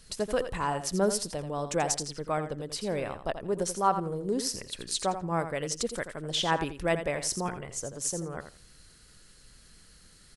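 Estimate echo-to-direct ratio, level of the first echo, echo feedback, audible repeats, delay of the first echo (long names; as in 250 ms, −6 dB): −10.0 dB, −10.0 dB, 18%, 2, 84 ms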